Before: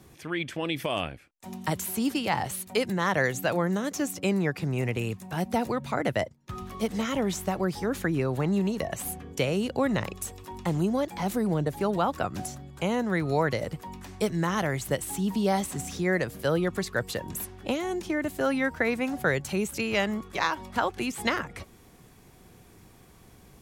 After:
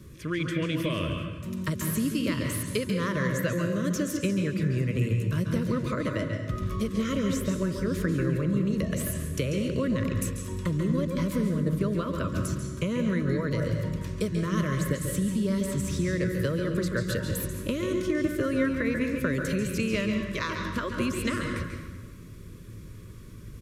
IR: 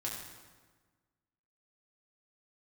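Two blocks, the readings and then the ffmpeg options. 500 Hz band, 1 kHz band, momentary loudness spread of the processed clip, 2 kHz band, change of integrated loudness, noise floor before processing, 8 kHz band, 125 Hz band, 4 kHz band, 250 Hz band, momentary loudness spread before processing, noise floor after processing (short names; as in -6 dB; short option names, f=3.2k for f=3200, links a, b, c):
-2.0 dB, -7.5 dB, 6 LU, -3.0 dB, 0.0 dB, -54 dBFS, -0.5 dB, +4.5 dB, -2.0 dB, +2.0 dB, 8 LU, -43 dBFS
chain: -filter_complex "[0:a]lowshelf=f=220:g=11,acompressor=threshold=-25dB:ratio=6,asuperstop=centerf=790:order=8:qfactor=2.2,aresample=32000,aresample=44100,asplit=2[a][b];[1:a]atrim=start_sample=2205,lowpass=8.9k,adelay=139[c];[b][c]afir=irnorm=-1:irlink=0,volume=-4dB[d];[a][d]amix=inputs=2:normalize=0"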